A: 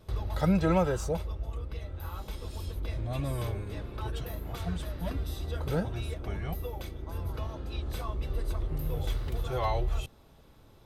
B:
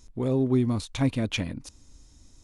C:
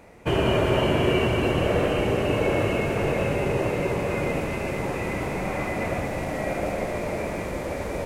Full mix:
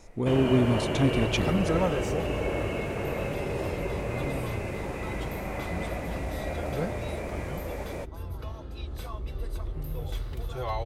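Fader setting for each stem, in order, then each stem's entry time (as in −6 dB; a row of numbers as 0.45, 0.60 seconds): −2.0, 0.0, −7.0 decibels; 1.05, 0.00, 0.00 seconds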